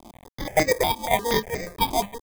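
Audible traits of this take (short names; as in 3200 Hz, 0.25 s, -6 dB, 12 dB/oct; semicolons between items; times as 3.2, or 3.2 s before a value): aliases and images of a low sample rate 1400 Hz, jitter 0%; chopped level 1.8 Hz, depth 65%, duty 70%; a quantiser's noise floor 8-bit, dither none; notches that jump at a steady rate 8.4 Hz 480–3300 Hz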